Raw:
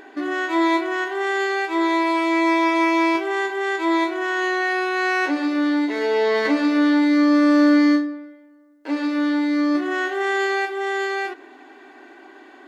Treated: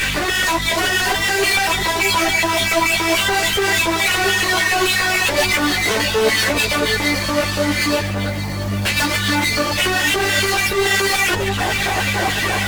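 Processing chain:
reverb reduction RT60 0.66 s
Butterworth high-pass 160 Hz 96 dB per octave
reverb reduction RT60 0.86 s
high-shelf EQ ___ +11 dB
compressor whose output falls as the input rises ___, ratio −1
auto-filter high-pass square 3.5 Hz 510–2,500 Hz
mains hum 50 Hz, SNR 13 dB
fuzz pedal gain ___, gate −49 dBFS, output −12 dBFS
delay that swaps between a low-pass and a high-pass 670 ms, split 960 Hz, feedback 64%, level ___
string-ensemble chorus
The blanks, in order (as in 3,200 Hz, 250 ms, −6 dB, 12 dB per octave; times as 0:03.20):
3,000 Hz, −32 dBFS, 45 dB, −7 dB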